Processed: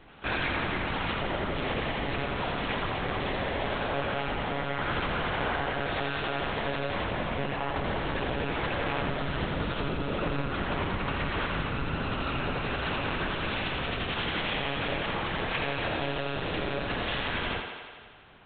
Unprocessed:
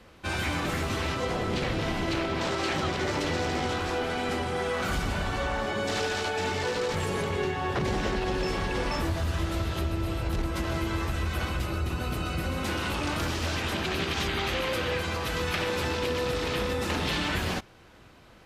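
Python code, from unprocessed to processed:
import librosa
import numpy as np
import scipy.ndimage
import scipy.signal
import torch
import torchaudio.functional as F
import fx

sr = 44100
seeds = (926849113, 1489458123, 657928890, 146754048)

p1 = fx.rider(x, sr, range_db=10, speed_s=0.5)
p2 = fx.lpc_monotone(p1, sr, seeds[0], pitch_hz=140.0, order=8)
p3 = fx.low_shelf(p2, sr, hz=190.0, db=-6.0)
y = p3 + fx.echo_thinned(p3, sr, ms=85, feedback_pct=72, hz=180.0, wet_db=-6, dry=0)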